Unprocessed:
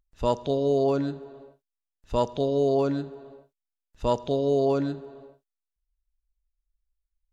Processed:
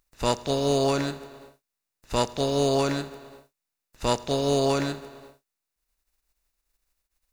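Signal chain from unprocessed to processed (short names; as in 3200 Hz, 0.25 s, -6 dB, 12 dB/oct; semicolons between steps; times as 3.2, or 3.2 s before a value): spectral contrast lowered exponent 0.57; notch 3200 Hz, Q 9.1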